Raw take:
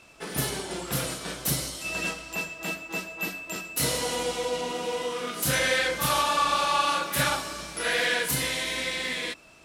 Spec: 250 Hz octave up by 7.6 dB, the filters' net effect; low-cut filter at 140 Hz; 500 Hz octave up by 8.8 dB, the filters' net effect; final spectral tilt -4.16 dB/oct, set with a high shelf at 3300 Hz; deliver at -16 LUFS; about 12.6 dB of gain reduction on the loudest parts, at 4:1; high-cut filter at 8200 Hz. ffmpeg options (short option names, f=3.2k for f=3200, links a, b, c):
-af "highpass=140,lowpass=8.2k,equalizer=f=250:t=o:g=8,equalizer=f=500:t=o:g=8,highshelf=f=3.3k:g=-6,acompressor=threshold=-31dB:ratio=4,volume=17.5dB"